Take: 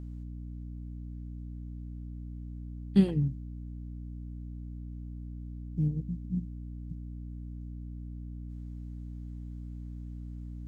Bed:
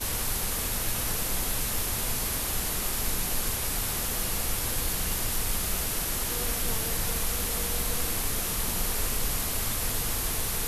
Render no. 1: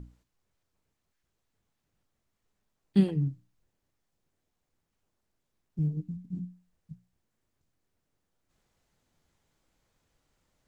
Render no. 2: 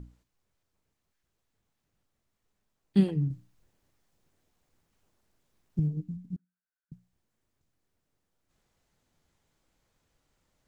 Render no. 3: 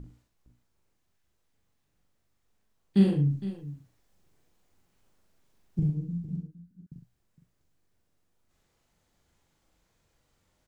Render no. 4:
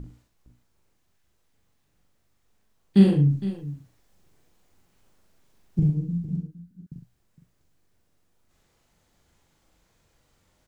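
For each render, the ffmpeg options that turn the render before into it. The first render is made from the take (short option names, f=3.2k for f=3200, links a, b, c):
-af "bandreject=f=60:t=h:w=6,bandreject=f=120:t=h:w=6,bandreject=f=180:t=h:w=6,bandreject=f=240:t=h:w=6,bandreject=f=300:t=h:w=6"
-filter_complex "[0:a]asettb=1/sr,asplit=3[a][b][c];[a]atrim=end=3.304[d];[b]atrim=start=3.3:end=5.8,asetpts=PTS-STARTPTS,afade=t=in:d=0.004:c=qsin,afade=t=out:st=2.496:d=0.004:c=qsin,acontrast=79[e];[c]atrim=start=5.796[f];[d][e]acrossfade=d=0.004:c1=hsin:c2=qsin[g];[g][f]acrossfade=d=0.004:c1=qsin:c2=hsin,asettb=1/sr,asplit=3[h][i][j];[h]atrim=end=6.364[k];[i]atrim=start=6.36:end=6.92,asetpts=PTS-STARTPTS,afade=t=in:d=0.004:c=qsin,afade=t=out:st=0.556:d=0.004:c=qsin,bandpass=f=1.5k:t=q:w=12[l];[j]atrim=start=6.916[m];[k][l]acrossfade=d=0.004:c1=hsin:c2=qsin[n];[n][m]acrossfade=d=0.004:c1=qsin:c2=hsin"
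-filter_complex "[0:a]asplit=2[a][b];[b]adelay=41,volume=-3dB[c];[a][c]amix=inputs=2:normalize=0,asplit=2[d][e];[e]aecho=0:1:64|461:0.422|0.188[f];[d][f]amix=inputs=2:normalize=0"
-af "volume=5.5dB"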